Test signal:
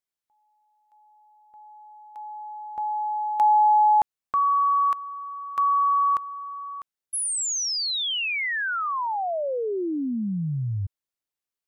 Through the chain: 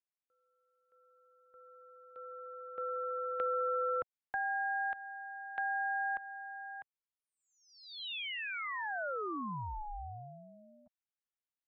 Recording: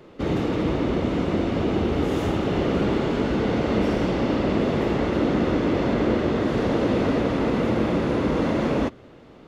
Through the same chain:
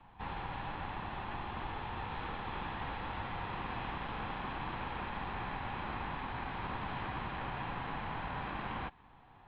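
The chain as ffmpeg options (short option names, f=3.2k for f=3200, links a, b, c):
-filter_complex "[0:a]highpass=f=210:t=q:w=0.5412,highpass=f=210:t=q:w=1.307,lowpass=f=3.2k:t=q:w=0.5176,lowpass=f=3.2k:t=q:w=0.7071,lowpass=f=3.2k:t=q:w=1.932,afreqshift=75,acrossover=split=390|980[a][b][c];[a]acompressor=threshold=-48dB:ratio=4[d];[b]acompressor=threshold=-30dB:ratio=4[e];[c]acompressor=threshold=-29dB:ratio=4[f];[d][e][f]amix=inputs=3:normalize=0,aeval=exprs='val(0)*sin(2*PI*420*n/s)':c=same,volume=-7dB"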